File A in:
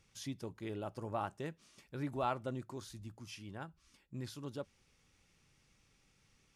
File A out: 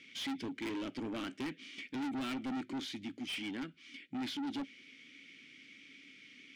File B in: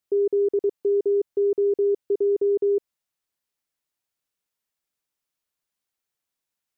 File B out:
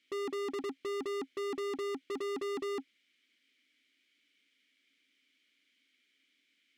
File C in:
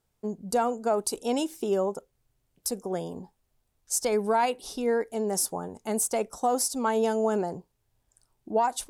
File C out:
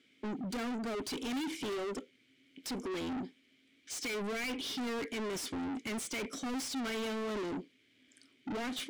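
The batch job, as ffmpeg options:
-filter_complex "[0:a]asplit=3[a][b][c];[a]bandpass=f=270:t=q:w=8,volume=0dB[d];[b]bandpass=f=2.29k:t=q:w=8,volume=-6dB[e];[c]bandpass=f=3.01k:t=q:w=8,volume=-9dB[f];[d][e][f]amix=inputs=3:normalize=0,asplit=2[g][h];[h]highpass=f=720:p=1,volume=44dB,asoftclip=type=tanh:threshold=-24dB[i];[g][i]amix=inputs=2:normalize=0,lowpass=f=6.1k:p=1,volume=-6dB,volume=-6dB"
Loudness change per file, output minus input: +3.0, -14.5, -9.5 LU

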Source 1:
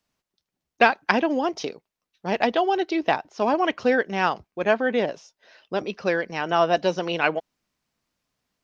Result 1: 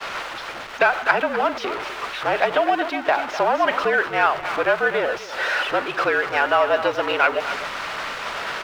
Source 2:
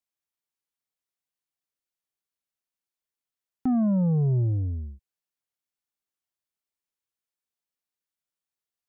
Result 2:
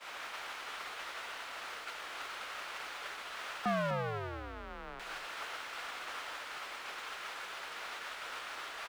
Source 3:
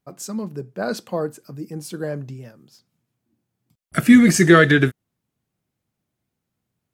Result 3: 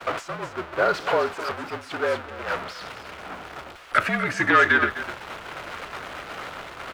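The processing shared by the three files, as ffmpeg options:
-filter_complex "[0:a]aeval=exprs='val(0)+0.5*0.0944*sgn(val(0))':c=same,equalizer=f=1.4k:t=o:w=0.4:g=5,asoftclip=type=tanh:threshold=-7.5dB,acompressor=threshold=-24dB:ratio=2.5,aeval=exprs='0.266*(cos(1*acos(clip(val(0)/0.266,-1,1)))-cos(1*PI/2))+0.0168*(cos(6*acos(clip(val(0)/0.266,-1,1)))-cos(6*PI/2))+0.0133*(cos(7*acos(clip(val(0)/0.266,-1,1)))-cos(7*PI/2))+0.0133*(cos(8*acos(clip(val(0)/0.266,-1,1)))-cos(8*PI/2))':c=same,acrossover=split=9800[a][b];[b]acompressor=threshold=-45dB:ratio=4:attack=1:release=60[c];[a][c]amix=inputs=2:normalize=0,acrossover=split=490 3400:gain=0.0891 1 0.112[d][e][f];[d][e][f]amix=inputs=3:normalize=0,asplit=2[g][h];[h]aecho=0:1:251:0.299[i];[g][i]amix=inputs=2:normalize=0,agate=range=-33dB:threshold=-30dB:ratio=3:detection=peak,afreqshift=-48,volume=8.5dB"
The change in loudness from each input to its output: +2.0, -16.0, -8.0 LU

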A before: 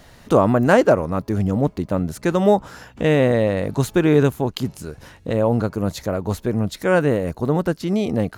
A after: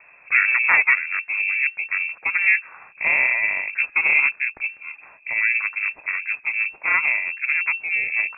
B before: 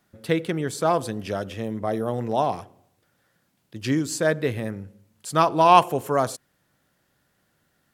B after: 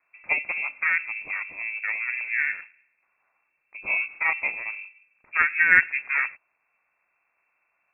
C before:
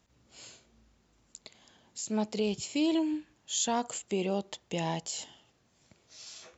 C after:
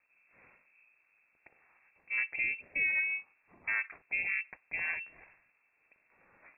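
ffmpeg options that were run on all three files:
-af "aeval=exprs='val(0)*sin(2*PI*170*n/s)':c=same,lowpass=f=2.3k:t=q:w=0.5098,lowpass=f=2.3k:t=q:w=0.6013,lowpass=f=2.3k:t=q:w=0.9,lowpass=f=2.3k:t=q:w=2.563,afreqshift=-2700"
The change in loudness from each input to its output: +0.5, -0.5, -0.5 LU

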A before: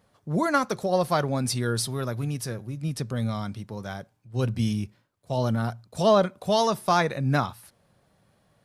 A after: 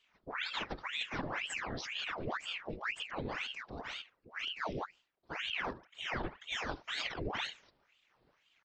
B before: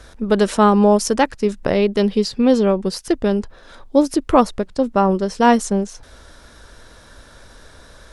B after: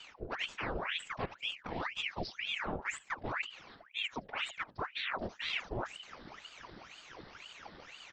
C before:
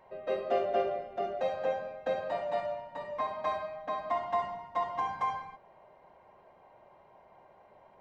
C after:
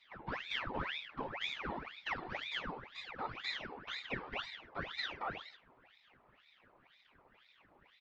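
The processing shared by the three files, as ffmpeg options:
-af "bandreject=f=358.7:t=h:w=4,bandreject=f=717.4:t=h:w=4,bandreject=f=1.0761k:t=h:w=4,bandreject=f=1.4348k:t=h:w=4,bandreject=f=1.7935k:t=h:w=4,bandreject=f=2.1522k:t=h:w=4,bandreject=f=2.5109k:t=h:w=4,bandreject=f=2.8696k:t=h:w=4,areverse,acompressor=threshold=-27dB:ratio=12,areverse,aecho=1:1:75:0.0891,afftfilt=real='hypot(re,im)*cos(2*PI*random(0))':imag='hypot(re,im)*sin(2*PI*random(1))':win_size=512:overlap=0.75,aresample=11025,aresample=44100,aeval=exprs='val(0)*sin(2*PI*1600*n/s+1600*0.9/2*sin(2*PI*2*n/s))':c=same,volume=1dB"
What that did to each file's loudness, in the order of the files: -12.5, -21.0, -7.5 LU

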